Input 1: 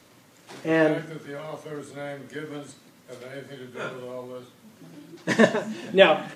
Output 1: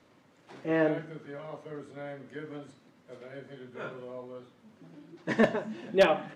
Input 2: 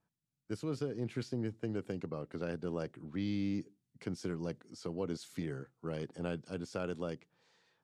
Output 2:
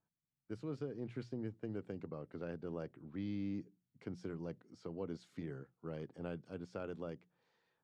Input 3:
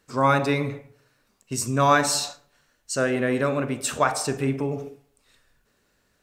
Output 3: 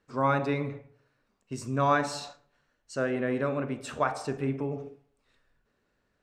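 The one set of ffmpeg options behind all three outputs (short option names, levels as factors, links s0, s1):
-af "aemphasis=mode=reproduction:type=75fm,aeval=exprs='0.531*(abs(mod(val(0)/0.531+3,4)-2)-1)':c=same,bandreject=f=60:t=h:w=6,bandreject=f=120:t=h:w=6,bandreject=f=180:t=h:w=6,volume=0.501"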